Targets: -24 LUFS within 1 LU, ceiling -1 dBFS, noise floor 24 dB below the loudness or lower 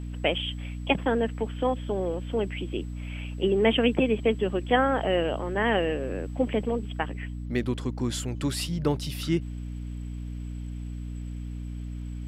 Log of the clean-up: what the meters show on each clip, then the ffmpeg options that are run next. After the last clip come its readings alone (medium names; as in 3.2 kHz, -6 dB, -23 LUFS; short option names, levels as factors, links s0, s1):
hum 60 Hz; highest harmonic 300 Hz; hum level -32 dBFS; loudness -28.5 LUFS; peak level -7.5 dBFS; loudness target -24.0 LUFS
-> -af "bandreject=f=60:t=h:w=6,bandreject=f=120:t=h:w=6,bandreject=f=180:t=h:w=6,bandreject=f=240:t=h:w=6,bandreject=f=300:t=h:w=6"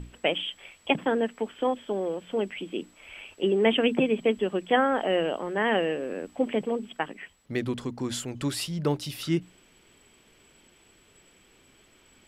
hum not found; loudness -28.0 LUFS; peak level -7.5 dBFS; loudness target -24.0 LUFS
-> -af "volume=1.58"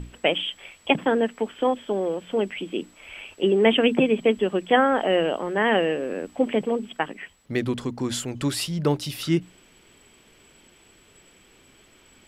loudness -24.0 LUFS; peak level -3.5 dBFS; noise floor -56 dBFS